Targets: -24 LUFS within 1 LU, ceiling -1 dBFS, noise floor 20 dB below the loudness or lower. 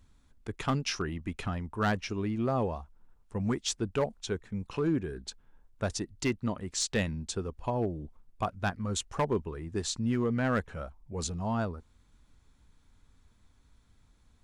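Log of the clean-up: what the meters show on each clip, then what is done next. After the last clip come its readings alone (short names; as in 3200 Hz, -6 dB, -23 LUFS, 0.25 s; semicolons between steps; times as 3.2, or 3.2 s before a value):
clipped 0.6%; flat tops at -21.5 dBFS; loudness -33.0 LUFS; peak -21.5 dBFS; loudness target -24.0 LUFS
-> clip repair -21.5 dBFS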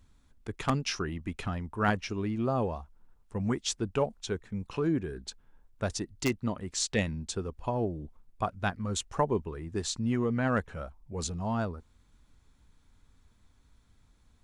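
clipped 0.0%; loudness -32.5 LUFS; peak -12.5 dBFS; loudness target -24.0 LUFS
-> gain +8.5 dB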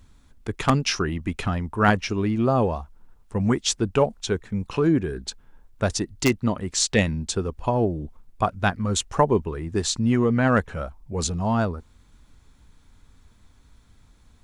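loudness -24.0 LUFS; peak -4.0 dBFS; noise floor -56 dBFS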